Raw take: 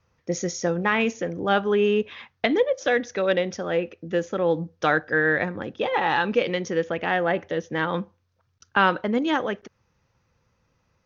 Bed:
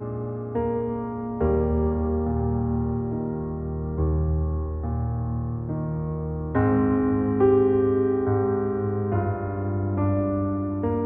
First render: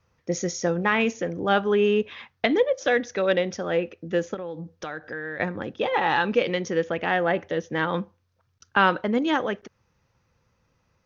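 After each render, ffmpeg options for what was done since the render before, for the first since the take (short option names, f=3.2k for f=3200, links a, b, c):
-filter_complex "[0:a]asettb=1/sr,asplit=3[a][b][c];[a]atrim=end=4.344[d];[b]atrim=start=4.34:end=5.4,asetpts=PTS-STARTPTS,afade=t=in:d=0.004:c=qsin,afade=t=out:st=1.056:d=0.004:c=qsin,acompressor=threshold=-32dB:ratio=4:attack=3.2:release=140:knee=1:detection=peak[e];[c]atrim=start=5.396[f];[d][e]acrossfade=d=0.004:c1=hsin:c2=qsin[g];[g][f]acrossfade=d=0.004:c1=qsin:c2=hsin"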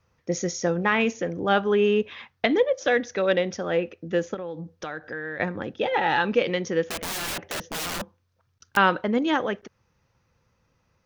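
-filter_complex "[0:a]asettb=1/sr,asplit=3[a][b][c];[a]atrim=end=5.754[d];[b]atrim=start=5.75:end=6.19,asetpts=PTS-STARTPTS,afade=t=in:d=0.004:c=qsin,afade=t=out:st=0.436:d=0.004:c=qsin,asuperstop=centerf=1100:order=4:qfactor=4.5[e];[c]atrim=start=6.186[f];[d][e]acrossfade=d=0.004:c1=hsin:c2=qsin[g];[g][f]acrossfade=d=0.004:c1=qsin:c2=hsin,asettb=1/sr,asplit=3[h][i][j];[h]atrim=end=6.894[k];[i]atrim=start=6.89:end=8.77,asetpts=PTS-STARTPTS,afade=t=in:d=0.004:c=qsin,afade=t=out:st=1.876:d=0.004:c=qsin,aeval=exprs='(mod(18.8*val(0)+1,2)-1)/18.8':c=same[l];[j]atrim=start=8.766[m];[k][l]acrossfade=d=0.004:c1=hsin:c2=qsin[n];[n][m]acrossfade=d=0.004:c1=qsin:c2=hsin"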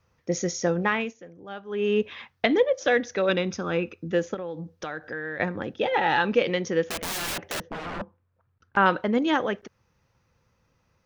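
-filter_complex "[0:a]asettb=1/sr,asplit=3[a][b][c];[a]atrim=end=3.294[d];[b]atrim=start=3.29:end=4.11,asetpts=PTS-STARTPTS,afade=t=in:d=0.004:c=qsin,afade=t=out:st=0.816:d=0.004:c=qsin,aecho=1:1:0.8:0.56,atrim=end_sample=36162[e];[c]atrim=start=4.106[f];[d][e]acrossfade=d=0.004:c1=hsin:c2=qsin[g];[g][f]acrossfade=d=0.004:c1=qsin:c2=hsin,asettb=1/sr,asplit=3[h][i][j];[h]atrim=end=7.604[k];[i]atrim=start=7.6:end=8.86,asetpts=PTS-STARTPTS,afade=t=in:d=0.004:c=qsin,afade=t=out:st=1.256:d=0.004:c=qsin,lowpass=1.7k[l];[j]atrim=start=8.856[m];[k][l]acrossfade=d=0.004:c1=hsin:c2=qsin[n];[n][m]acrossfade=d=0.004:c1=qsin:c2=hsin,asplit=3[o][p][q];[o]atrim=end=1.15,asetpts=PTS-STARTPTS,afade=t=out:st=0.82:d=0.33:silence=0.141254[r];[p]atrim=start=1.15:end=1.67,asetpts=PTS-STARTPTS,volume=-17dB[s];[q]atrim=start=1.67,asetpts=PTS-STARTPTS,afade=t=in:d=0.33:silence=0.141254[t];[r][s][t]concat=n=3:v=0:a=1"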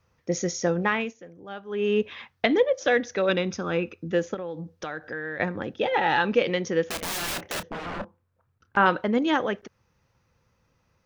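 -filter_complex "[0:a]asettb=1/sr,asplit=3[a][b][c];[a]atrim=end=6.954[d];[b]atrim=start=6.95:end=8.88,asetpts=PTS-STARTPTS,afade=t=in:d=0.004:c=qsin,afade=t=out:st=1.926:d=0.004:c=qsin,asplit=2[e][f];[f]adelay=29,volume=-11.5dB[g];[e][g]amix=inputs=2:normalize=0,atrim=end_sample=85113[h];[c]atrim=start=8.876[i];[d][h]acrossfade=d=0.004:c1=hsin:c2=qsin[j];[j][i]acrossfade=d=0.004:c1=qsin:c2=hsin"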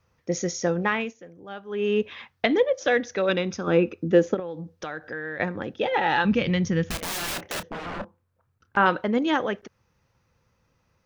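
-filter_complex "[0:a]asettb=1/sr,asplit=3[a][b][c];[a]atrim=end=3.674[d];[b]atrim=start=3.67:end=4.4,asetpts=PTS-STARTPTS,afade=t=in:d=0.004:c=qsin,afade=t=out:st=0.726:d=0.004:c=qsin,equalizer=f=320:w=0.49:g=8[e];[c]atrim=start=4.396[f];[d][e]acrossfade=d=0.004:c1=hsin:c2=qsin[g];[g][f]acrossfade=d=0.004:c1=qsin:c2=hsin,asplit=3[h][i][j];[h]afade=t=out:st=6.24:d=0.02[k];[i]asubboost=boost=11.5:cutoff=130,afade=t=in:st=6.24:d=0.02,afade=t=out:st=6.95:d=0.02[l];[j]afade=t=in:st=6.95:d=0.02[m];[k][l][m]amix=inputs=3:normalize=0"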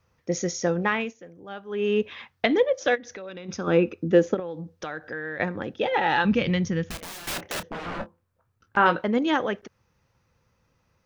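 -filter_complex "[0:a]asplit=3[a][b][c];[a]afade=t=out:st=2.94:d=0.02[d];[b]acompressor=threshold=-36dB:ratio=6:attack=3.2:release=140:knee=1:detection=peak,afade=t=in:st=2.94:d=0.02,afade=t=out:st=3.48:d=0.02[e];[c]afade=t=in:st=3.48:d=0.02[f];[d][e][f]amix=inputs=3:normalize=0,asettb=1/sr,asplit=3[g][h][i];[g]atrim=end=7.834[j];[h]atrim=start=7.83:end=9.04,asetpts=PTS-STARTPTS,afade=t=in:d=0.004:c=qsin,afade=t=out:st=1.206:d=0.004:c=qsin,asplit=2[k][l];[l]adelay=18,volume=-8dB[m];[k][m]amix=inputs=2:normalize=0,atrim=end_sample=53361[n];[i]atrim=start=9.036[o];[j][n]acrossfade=d=0.004:c1=hsin:c2=qsin[p];[p][o]acrossfade=d=0.004:c1=qsin:c2=hsin,asplit=2[q][r];[q]atrim=end=7.27,asetpts=PTS-STARTPTS,afade=t=out:st=6.5:d=0.77:silence=0.237137[s];[r]atrim=start=7.27,asetpts=PTS-STARTPTS,afade=t=in:d=0.004:c=hsin:silence=0.237137[t];[s][t]concat=n=2:v=0:a=1"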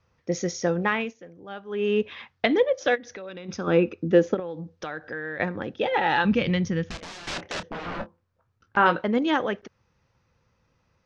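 -af "lowpass=f=6.3k:w=0.5412,lowpass=f=6.3k:w=1.3066"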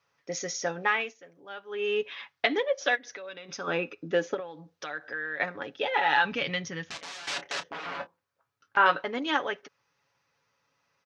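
-af "highpass=f=940:p=1,aecho=1:1:7.1:0.51"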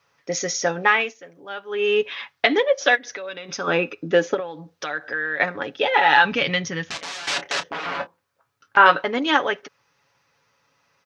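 -af "volume=8.5dB,alimiter=limit=-1dB:level=0:latency=1"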